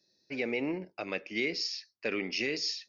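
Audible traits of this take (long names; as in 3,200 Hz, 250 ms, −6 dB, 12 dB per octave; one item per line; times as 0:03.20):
background noise floor −77 dBFS
spectral slope −3.0 dB per octave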